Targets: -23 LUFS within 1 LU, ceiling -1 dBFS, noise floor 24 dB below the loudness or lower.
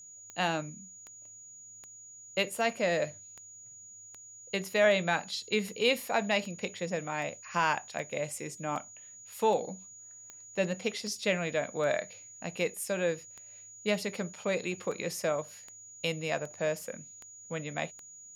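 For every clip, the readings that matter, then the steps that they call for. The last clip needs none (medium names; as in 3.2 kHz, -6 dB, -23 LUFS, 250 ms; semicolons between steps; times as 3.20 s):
clicks found 24; steady tone 6.8 kHz; tone level -48 dBFS; loudness -32.0 LUFS; peak level -14.5 dBFS; loudness target -23.0 LUFS
-> de-click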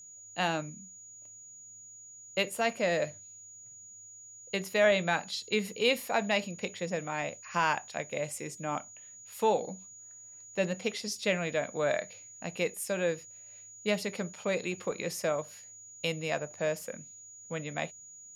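clicks found 0; steady tone 6.8 kHz; tone level -48 dBFS
-> band-stop 6.8 kHz, Q 30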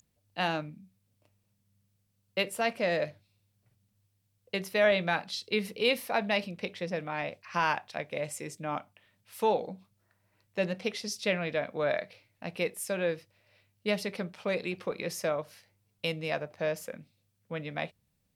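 steady tone not found; loudness -32.0 LUFS; peak level -15.0 dBFS; loudness target -23.0 LUFS
-> trim +9 dB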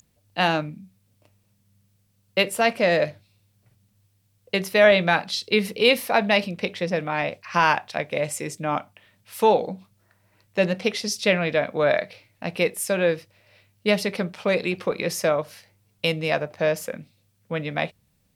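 loudness -23.0 LUFS; peak level -6.0 dBFS; noise floor -67 dBFS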